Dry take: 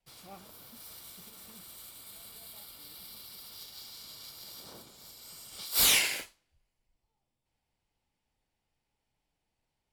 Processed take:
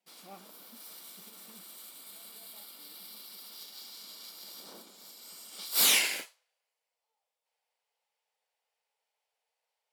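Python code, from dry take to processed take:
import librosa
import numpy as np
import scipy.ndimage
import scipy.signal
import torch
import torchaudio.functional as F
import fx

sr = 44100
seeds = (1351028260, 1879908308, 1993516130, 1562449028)

y = fx.brickwall_highpass(x, sr, low_hz=fx.steps((0.0, 170.0), (6.24, 420.0)))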